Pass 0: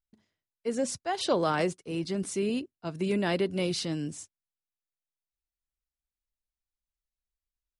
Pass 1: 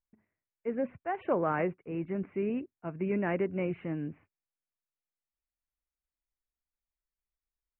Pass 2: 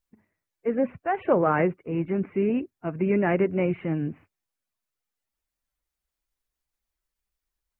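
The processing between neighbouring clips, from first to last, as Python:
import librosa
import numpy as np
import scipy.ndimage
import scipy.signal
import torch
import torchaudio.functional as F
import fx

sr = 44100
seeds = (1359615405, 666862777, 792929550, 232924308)

y1 = scipy.signal.sosfilt(scipy.signal.butter(12, 2500.0, 'lowpass', fs=sr, output='sos'), x)
y1 = y1 * librosa.db_to_amplitude(-2.5)
y2 = fx.spec_quant(y1, sr, step_db=15)
y2 = y2 * librosa.db_to_amplitude(8.0)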